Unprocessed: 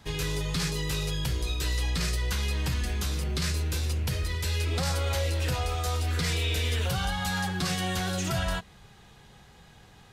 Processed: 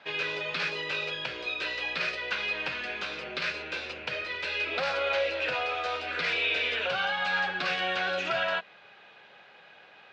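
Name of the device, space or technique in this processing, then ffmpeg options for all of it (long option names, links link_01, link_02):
phone earpiece: -af "highpass=420,equalizer=frequency=590:width_type=q:width=4:gain=9,equalizer=frequency=1500:width_type=q:width=4:gain=8,equalizer=frequency=2500:width_type=q:width=4:gain=10,lowpass=frequency=4100:width=0.5412,lowpass=frequency=4100:width=1.3066"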